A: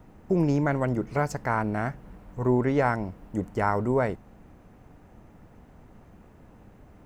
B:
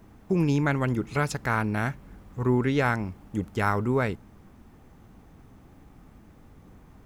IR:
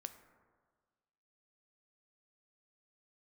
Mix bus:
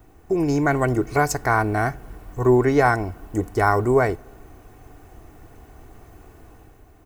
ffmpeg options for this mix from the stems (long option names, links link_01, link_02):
-filter_complex "[0:a]equalizer=frequency=220:width_type=o:width=0.66:gain=-5,volume=-2dB,asplit=2[link_01][link_02];[link_02]volume=-10.5dB[link_03];[1:a]volume=-14.5dB[link_04];[2:a]atrim=start_sample=2205[link_05];[link_03][link_05]afir=irnorm=-1:irlink=0[link_06];[link_01][link_04][link_06]amix=inputs=3:normalize=0,highshelf=frequency=7100:gain=12,aecho=1:1:2.7:0.52,dynaudnorm=framelen=100:gausssize=11:maxgain=6dB"